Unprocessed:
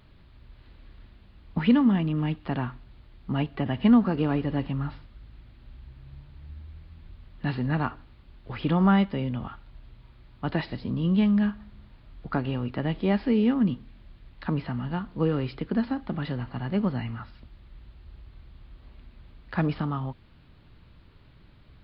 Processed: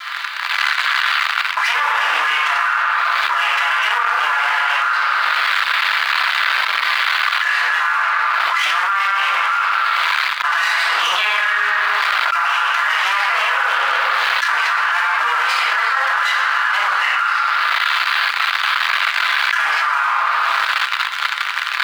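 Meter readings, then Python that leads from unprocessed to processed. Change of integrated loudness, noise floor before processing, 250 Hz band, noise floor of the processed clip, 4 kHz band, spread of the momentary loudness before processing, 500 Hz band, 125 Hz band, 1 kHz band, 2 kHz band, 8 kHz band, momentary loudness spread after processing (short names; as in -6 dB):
+11.0 dB, -54 dBFS, under -30 dB, -23 dBFS, +25.0 dB, 17 LU, -1.0 dB, under -40 dB, +21.5 dB, +28.0 dB, n/a, 1 LU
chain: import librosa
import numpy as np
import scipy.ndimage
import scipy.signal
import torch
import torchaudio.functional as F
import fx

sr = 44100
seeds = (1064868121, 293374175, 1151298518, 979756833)

y = fx.lower_of_two(x, sr, delay_ms=5.9)
y = fx.high_shelf(y, sr, hz=4400.0, db=6.5)
y = fx.room_shoebox(y, sr, seeds[0], volume_m3=710.0, walls='mixed', distance_m=3.0)
y = fx.leveller(y, sr, passes=2)
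y = scipy.signal.sosfilt(scipy.signal.butter(4, 1100.0, 'highpass', fs=sr, output='sos'), y)
y = fx.peak_eq(y, sr, hz=1400.0, db=10.5, octaves=1.7)
y = fx.env_flatten(y, sr, amount_pct=100)
y = F.gain(torch.from_numpy(y), -10.0).numpy()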